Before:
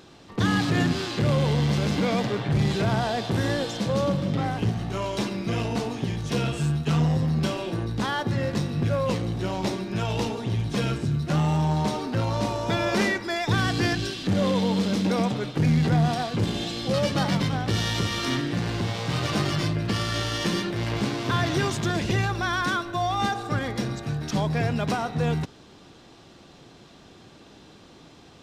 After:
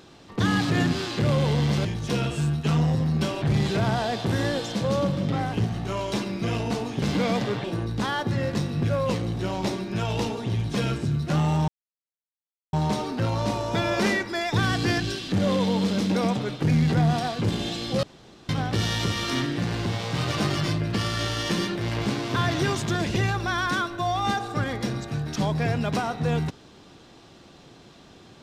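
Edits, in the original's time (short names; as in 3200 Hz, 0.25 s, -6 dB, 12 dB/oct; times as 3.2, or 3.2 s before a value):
1.85–2.47 swap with 6.07–7.64
11.68 insert silence 1.05 s
16.98–17.44 room tone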